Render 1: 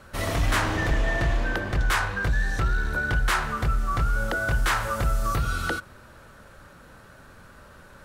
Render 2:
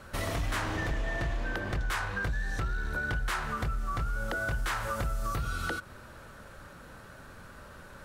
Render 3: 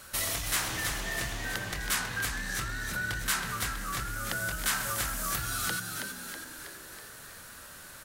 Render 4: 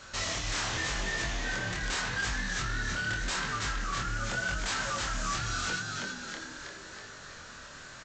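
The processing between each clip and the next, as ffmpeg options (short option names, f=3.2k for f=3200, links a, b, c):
-af "acompressor=threshold=-31dB:ratio=3"
-filter_complex "[0:a]crystalizer=i=9.5:c=0,asplit=2[a][b];[b]asplit=8[c][d][e][f][g][h][i][j];[c]adelay=323,afreqshift=70,volume=-6dB[k];[d]adelay=646,afreqshift=140,volume=-10.6dB[l];[e]adelay=969,afreqshift=210,volume=-15.2dB[m];[f]adelay=1292,afreqshift=280,volume=-19.7dB[n];[g]adelay=1615,afreqshift=350,volume=-24.3dB[o];[h]adelay=1938,afreqshift=420,volume=-28.9dB[p];[i]adelay=2261,afreqshift=490,volume=-33.5dB[q];[j]adelay=2584,afreqshift=560,volume=-38.1dB[r];[k][l][m][n][o][p][q][r]amix=inputs=8:normalize=0[s];[a][s]amix=inputs=2:normalize=0,volume=-8dB"
-af "aresample=16000,aeval=exprs='0.0335*(abs(mod(val(0)/0.0335+3,4)-2)-1)':c=same,aresample=44100,flanger=delay=20:depth=7.9:speed=0.85,volume=5.5dB"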